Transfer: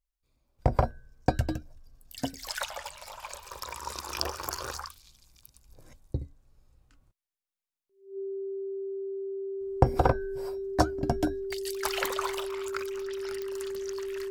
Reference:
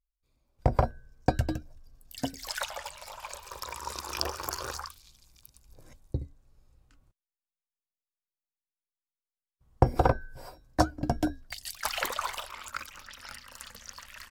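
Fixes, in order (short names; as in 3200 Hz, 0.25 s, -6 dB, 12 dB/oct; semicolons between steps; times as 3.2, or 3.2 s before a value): de-click; notch 390 Hz, Q 30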